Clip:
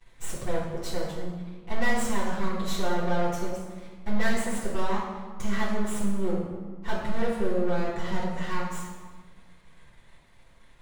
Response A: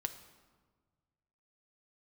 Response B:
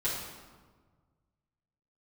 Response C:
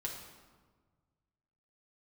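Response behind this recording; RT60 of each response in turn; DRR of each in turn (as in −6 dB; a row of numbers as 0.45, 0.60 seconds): B; 1.5, 1.5, 1.5 seconds; 7.5, −9.5, −1.5 decibels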